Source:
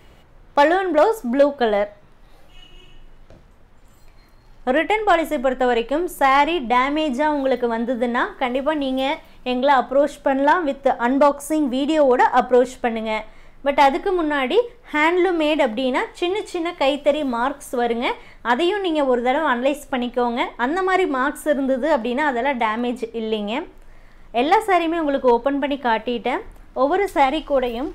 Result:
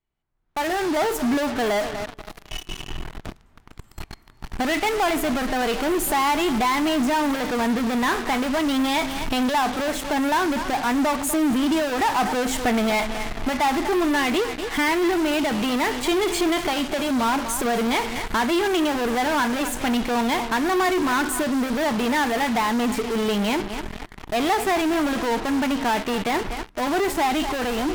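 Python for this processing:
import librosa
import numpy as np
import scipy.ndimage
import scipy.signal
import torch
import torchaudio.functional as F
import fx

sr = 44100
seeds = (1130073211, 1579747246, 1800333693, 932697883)

p1 = fx.doppler_pass(x, sr, speed_mps=5, closest_m=1.3, pass_at_s=12.74)
p2 = fx.recorder_agc(p1, sr, target_db=-15.5, rise_db_per_s=27.0, max_gain_db=30)
p3 = fx.echo_feedback(p2, sr, ms=245, feedback_pct=36, wet_db=-18)
p4 = fx.fuzz(p3, sr, gain_db=46.0, gate_db=-42.0)
p5 = p3 + (p4 * 10.0 ** (-6.0 / 20.0))
p6 = fx.peak_eq(p5, sr, hz=530.0, db=-13.5, octaves=0.21)
y = p6 * 10.0 ** (-4.0 / 20.0)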